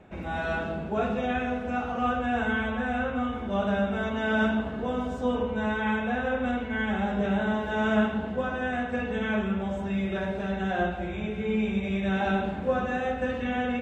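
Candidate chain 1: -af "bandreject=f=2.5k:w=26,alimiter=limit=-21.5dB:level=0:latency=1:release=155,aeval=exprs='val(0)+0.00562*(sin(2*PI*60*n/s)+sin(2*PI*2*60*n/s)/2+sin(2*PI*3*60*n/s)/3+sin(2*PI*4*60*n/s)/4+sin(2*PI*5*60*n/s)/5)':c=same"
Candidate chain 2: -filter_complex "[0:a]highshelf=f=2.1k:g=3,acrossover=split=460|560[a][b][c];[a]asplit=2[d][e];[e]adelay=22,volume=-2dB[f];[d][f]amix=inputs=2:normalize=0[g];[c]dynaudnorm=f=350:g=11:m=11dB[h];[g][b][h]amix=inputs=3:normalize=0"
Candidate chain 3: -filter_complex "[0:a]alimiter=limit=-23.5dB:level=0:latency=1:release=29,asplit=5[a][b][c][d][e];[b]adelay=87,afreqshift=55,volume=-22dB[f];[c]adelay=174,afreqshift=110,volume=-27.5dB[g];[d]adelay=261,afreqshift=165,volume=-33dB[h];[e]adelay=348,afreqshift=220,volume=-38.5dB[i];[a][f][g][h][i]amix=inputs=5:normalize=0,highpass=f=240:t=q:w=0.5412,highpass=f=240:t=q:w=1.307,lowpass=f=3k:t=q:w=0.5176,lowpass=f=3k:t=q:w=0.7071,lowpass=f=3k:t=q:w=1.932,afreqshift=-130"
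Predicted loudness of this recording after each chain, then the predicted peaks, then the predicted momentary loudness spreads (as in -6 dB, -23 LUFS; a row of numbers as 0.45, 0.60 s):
-31.0, -22.0, -33.5 LUFS; -20.5, -5.0, -20.5 dBFS; 2, 9, 3 LU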